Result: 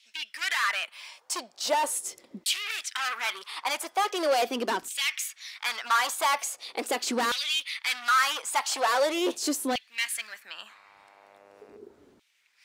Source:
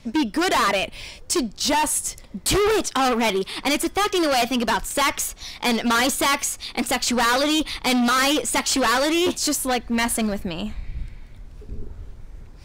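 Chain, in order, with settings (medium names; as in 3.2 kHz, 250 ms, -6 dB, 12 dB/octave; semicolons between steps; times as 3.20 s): 10.66–11.76 s: mains buzz 100 Hz, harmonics 28, -44 dBFS -6 dB/octave; LFO high-pass saw down 0.41 Hz 270–3100 Hz; trim -8 dB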